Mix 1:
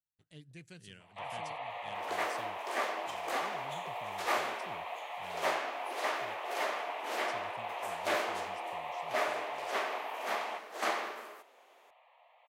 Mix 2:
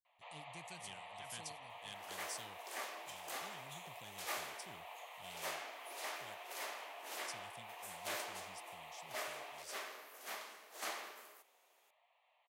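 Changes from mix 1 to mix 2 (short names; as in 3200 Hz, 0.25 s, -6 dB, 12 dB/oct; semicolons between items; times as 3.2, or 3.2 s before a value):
speech +8.0 dB; first sound: entry -0.95 s; master: add pre-emphasis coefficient 0.8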